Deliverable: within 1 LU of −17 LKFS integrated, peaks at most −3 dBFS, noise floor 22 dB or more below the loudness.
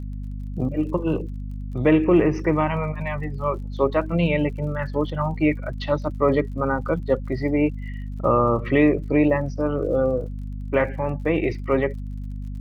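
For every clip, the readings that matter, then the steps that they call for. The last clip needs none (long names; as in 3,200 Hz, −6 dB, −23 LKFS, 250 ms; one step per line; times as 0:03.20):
crackle rate 46 per second; mains hum 50 Hz; hum harmonics up to 250 Hz; level of the hum −28 dBFS; integrated loudness −22.5 LKFS; sample peak −5.5 dBFS; target loudness −17.0 LKFS
→ click removal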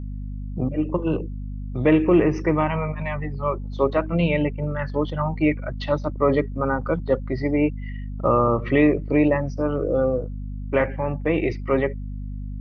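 crackle rate 0.079 per second; mains hum 50 Hz; hum harmonics up to 250 Hz; level of the hum −28 dBFS
→ mains-hum notches 50/100/150/200/250 Hz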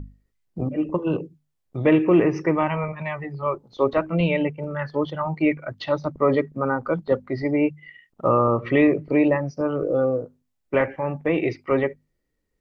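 mains hum none found; integrated loudness −23.0 LKFS; sample peak −6.5 dBFS; target loudness −17.0 LKFS
→ level +6 dB
brickwall limiter −3 dBFS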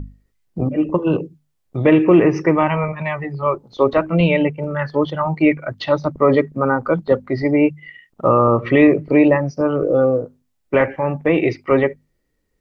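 integrated loudness −17.5 LKFS; sample peak −3.0 dBFS; background noise floor −69 dBFS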